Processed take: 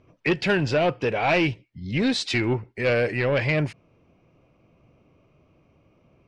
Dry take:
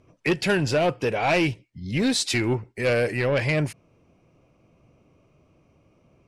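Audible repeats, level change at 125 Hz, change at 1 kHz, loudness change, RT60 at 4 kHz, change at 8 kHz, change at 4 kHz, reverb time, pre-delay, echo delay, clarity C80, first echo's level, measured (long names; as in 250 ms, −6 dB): no echo audible, 0.0 dB, +0.5 dB, 0.0 dB, no reverb audible, −8.5 dB, −1.0 dB, no reverb audible, no reverb audible, no echo audible, no reverb audible, no echo audible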